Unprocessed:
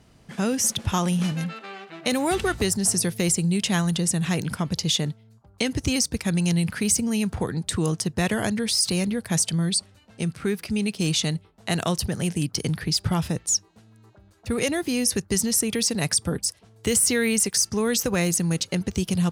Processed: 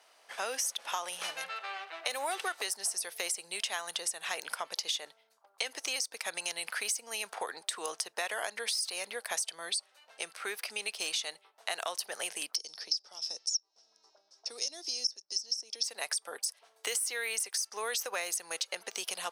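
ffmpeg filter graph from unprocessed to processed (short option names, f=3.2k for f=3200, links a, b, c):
-filter_complex "[0:a]asettb=1/sr,asplit=3[a][b][c];[a]atrim=end=12.564[d];[b]atrim=start=12.56:end=15.84,asetpts=PTS-STARTPTS,afade=t=in:d=0.004:c=qsin,afade=t=out:st=3.276:d=0.004:c=qsin,equalizer=f=1.9k:w=0.6:g=-13.5,acrossover=split=340|3200[e][f][g];[e]acompressor=threshold=-31dB:ratio=4[h];[f]acompressor=threshold=-44dB:ratio=4[i];[g]acompressor=threshold=-28dB:ratio=4[j];[h][i][j]amix=inputs=3:normalize=0,lowpass=f=5.4k:t=q:w=15[k];[c]atrim=start=15.836[l];[d][k]acrossfade=d=0.004:c1=hsin:c2=qsin[m];[m][l]acrossfade=d=0.004:c1=qsin:c2=hsin,highpass=f=600:w=0.5412,highpass=f=600:w=1.3066,bandreject=f=7.2k:w=9.5,acompressor=threshold=-31dB:ratio=6"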